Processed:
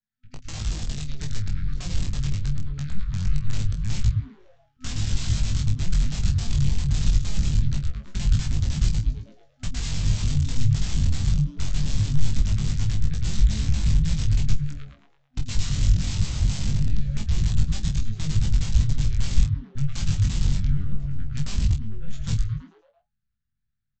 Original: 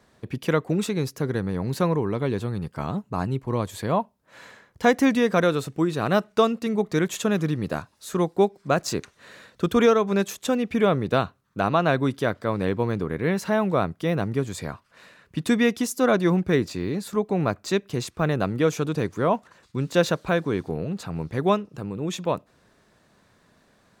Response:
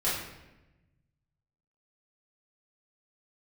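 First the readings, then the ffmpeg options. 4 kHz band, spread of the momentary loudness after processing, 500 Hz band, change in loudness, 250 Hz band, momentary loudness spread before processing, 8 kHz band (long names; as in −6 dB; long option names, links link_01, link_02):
0.0 dB, 8 LU, −27.5 dB, −2.0 dB, −9.5 dB, 10 LU, +1.5 dB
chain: -filter_complex "[0:a]highpass=85,aeval=exprs='0.501*(cos(1*acos(clip(val(0)/0.501,-1,1)))-cos(1*PI/2))+0.0224*(cos(2*acos(clip(val(0)/0.501,-1,1)))-cos(2*PI/2))+0.00316*(cos(6*acos(clip(val(0)/0.501,-1,1)))-cos(6*PI/2))+0.0708*(cos(7*acos(clip(val(0)/0.501,-1,1)))-cos(7*PI/2))+0.0282*(cos(8*acos(clip(val(0)/0.501,-1,1)))-cos(8*PI/2))':channel_layout=same,acrossover=split=300[link_01][link_02];[link_01]lowshelf=frequency=180:gain=2[link_03];[link_02]acompressor=threshold=-36dB:ratio=8[link_04];[link_03][link_04]amix=inputs=2:normalize=0,afftfilt=real='re*(1-between(b*sr/4096,250,1300))':imag='im*(1-between(b*sr/4096,250,1300))':win_size=4096:overlap=0.75,asplit=7[link_05][link_06][link_07][link_08][link_09][link_10][link_11];[link_06]adelay=110,afreqshift=-140,volume=-3.5dB[link_12];[link_07]adelay=220,afreqshift=-280,volume=-9.9dB[link_13];[link_08]adelay=330,afreqshift=-420,volume=-16.3dB[link_14];[link_09]adelay=440,afreqshift=-560,volume=-22.6dB[link_15];[link_10]adelay=550,afreqshift=-700,volume=-29dB[link_16];[link_11]adelay=660,afreqshift=-840,volume=-35.4dB[link_17];[link_05][link_12][link_13][link_14][link_15][link_16][link_17]amix=inputs=7:normalize=0,aresample=16000,aeval=exprs='(mod(31.6*val(0)+1,2)-1)/31.6':channel_layout=same,aresample=44100,acrossover=split=260|3000[link_18][link_19][link_20];[link_19]acompressor=threshold=-51dB:ratio=5[link_21];[link_18][link_21][link_20]amix=inputs=3:normalize=0,asplit=2[link_22][link_23];[link_23]adelay=28,volume=-9.5dB[link_24];[link_22][link_24]amix=inputs=2:normalize=0,asubboost=boost=10.5:cutoff=110,flanger=delay=19:depth=2.2:speed=0.22,volume=7dB"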